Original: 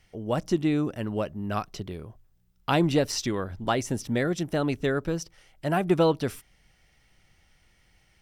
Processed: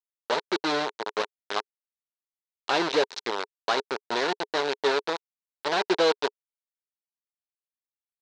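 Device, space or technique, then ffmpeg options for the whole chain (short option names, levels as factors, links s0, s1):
hand-held game console: -af "lowpass=8000,bandreject=f=930:w=7.3,acrusher=bits=3:mix=0:aa=0.000001,highpass=410,equalizer=f=420:t=q:w=4:g=10,equalizer=f=930:t=q:w=4:g=8,equalizer=f=1500:t=q:w=4:g=4,equalizer=f=4000:t=q:w=4:g=8,lowpass=f=5800:w=0.5412,lowpass=f=5800:w=1.3066,volume=0.708"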